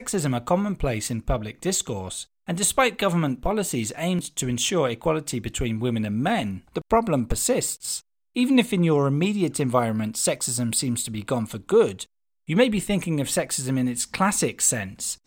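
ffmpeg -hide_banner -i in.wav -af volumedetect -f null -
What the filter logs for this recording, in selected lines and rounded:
mean_volume: -24.2 dB
max_volume: -5.8 dB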